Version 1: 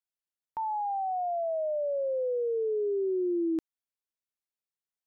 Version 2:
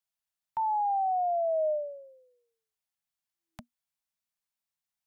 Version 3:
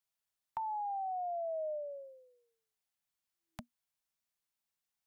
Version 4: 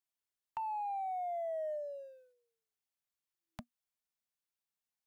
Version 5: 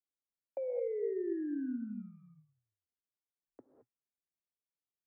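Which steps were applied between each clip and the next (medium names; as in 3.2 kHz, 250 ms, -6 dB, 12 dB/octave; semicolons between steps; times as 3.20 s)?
Chebyshev band-stop 240–610 Hz, order 5; trim +3.5 dB
compression 6:1, threshold -37 dBFS, peak gain reduction 10.5 dB
waveshaping leveller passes 1; trim -3.5 dB
level-controlled noise filter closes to 540 Hz, open at -38 dBFS; mistuned SSB -360 Hz 490–2300 Hz; gated-style reverb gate 240 ms rising, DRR 4 dB; trim +1 dB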